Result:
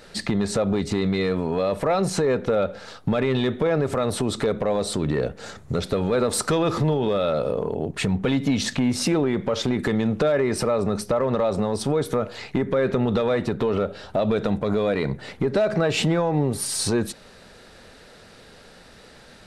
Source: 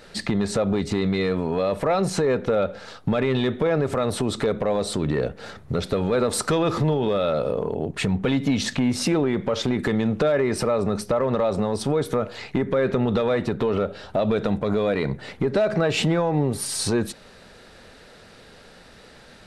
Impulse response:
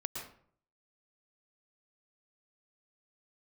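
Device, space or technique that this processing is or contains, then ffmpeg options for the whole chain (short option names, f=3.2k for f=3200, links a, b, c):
exciter from parts: -filter_complex "[0:a]asettb=1/sr,asplit=3[a][b][c];[a]atrim=end=5.374[d];[b]atrim=start=5.37:end=5.79,asetpts=PTS-STARTPTS,afade=t=in:d=0.004:c=qsin,afade=t=out:st=0.416:d=0.004:c=qsin,equalizer=f=7.1k:w=2.3:g=9[e];[c]atrim=start=5.786[f];[d][e]acrossfade=d=0.004:c1=hsin:c2=qsin[g];[g][f]acrossfade=d=0.004:c1=qsin:c2=hsin,asplit=2[h][i];[i]highpass=3.6k,asoftclip=type=tanh:threshold=-22.5dB,volume=-12dB[j];[h][j]amix=inputs=2:normalize=0"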